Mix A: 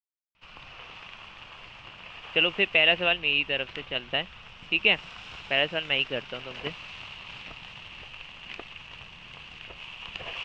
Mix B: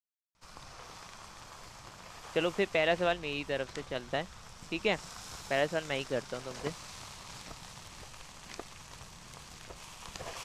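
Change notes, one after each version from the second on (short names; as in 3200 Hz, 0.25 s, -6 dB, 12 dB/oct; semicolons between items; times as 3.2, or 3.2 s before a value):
master: remove synth low-pass 2800 Hz, resonance Q 7.2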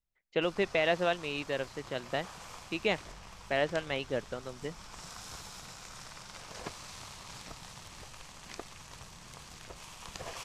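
speech: entry -2.00 s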